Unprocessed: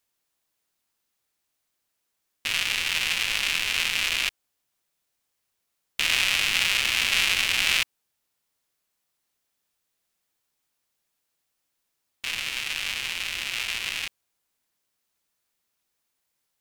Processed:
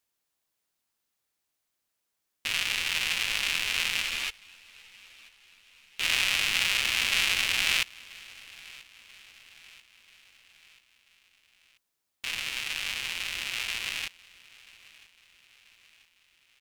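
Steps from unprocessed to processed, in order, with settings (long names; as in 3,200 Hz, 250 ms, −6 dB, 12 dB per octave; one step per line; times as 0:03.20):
repeating echo 986 ms, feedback 53%, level −22 dB
0:04.02–0:06.03: string-ensemble chorus
level −3 dB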